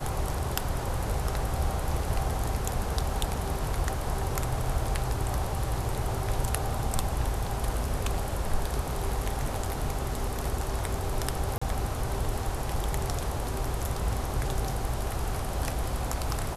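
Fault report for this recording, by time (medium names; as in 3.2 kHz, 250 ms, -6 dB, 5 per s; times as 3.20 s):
11.58–11.62 s: dropout 35 ms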